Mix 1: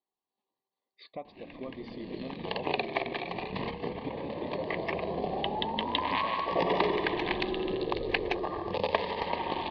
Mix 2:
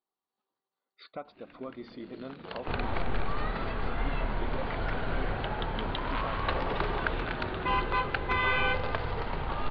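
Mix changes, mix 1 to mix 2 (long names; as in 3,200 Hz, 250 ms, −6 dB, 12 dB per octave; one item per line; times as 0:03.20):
first sound −8.0 dB
second sound: unmuted
master: remove Butterworth band-reject 1,400 Hz, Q 2.2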